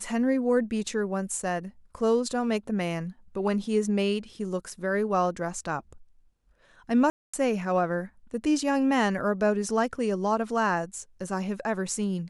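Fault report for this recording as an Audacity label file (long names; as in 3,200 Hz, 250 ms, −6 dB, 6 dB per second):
7.100000	7.330000	drop-out 235 ms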